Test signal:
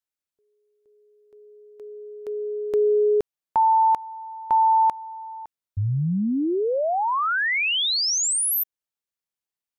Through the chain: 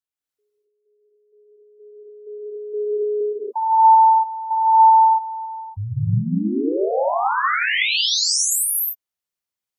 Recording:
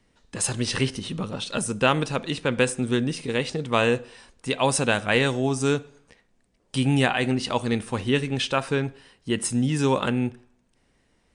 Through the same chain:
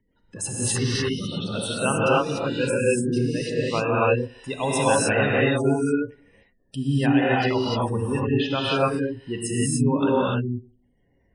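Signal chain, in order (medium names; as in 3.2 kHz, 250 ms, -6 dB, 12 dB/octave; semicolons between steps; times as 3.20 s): spectral gate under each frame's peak -15 dB strong; gated-style reverb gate 320 ms rising, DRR -6.5 dB; trim -4.5 dB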